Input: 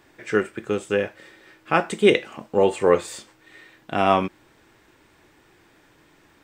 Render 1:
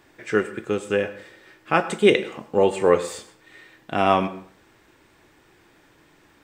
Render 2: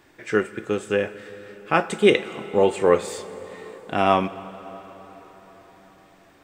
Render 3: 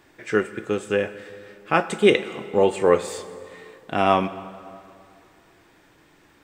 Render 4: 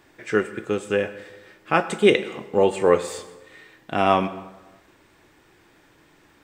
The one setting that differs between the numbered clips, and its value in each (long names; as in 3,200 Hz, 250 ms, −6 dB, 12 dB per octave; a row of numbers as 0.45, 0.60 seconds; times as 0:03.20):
dense smooth reverb, RT60: 0.5, 5.2, 2.5, 1.1 seconds